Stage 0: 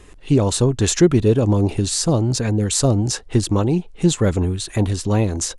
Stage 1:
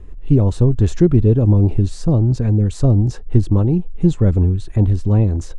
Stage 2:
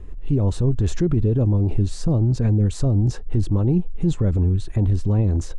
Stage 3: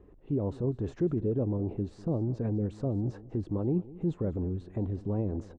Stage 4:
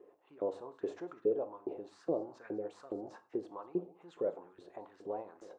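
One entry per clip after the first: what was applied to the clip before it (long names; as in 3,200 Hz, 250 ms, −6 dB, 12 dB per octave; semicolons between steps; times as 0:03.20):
spectral tilt −4 dB per octave; level −7 dB
brickwall limiter −11.5 dBFS, peak gain reduction 10 dB
resonant band-pass 460 Hz, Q 0.71; repeating echo 198 ms, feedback 23%, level −19 dB; level −5 dB
auto-filter high-pass saw up 2.4 Hz 400–1,700 Hz; on a send at −9.5 dB: convolution reverb, pre-delay 3 ms; on the sum: level −3.5 dB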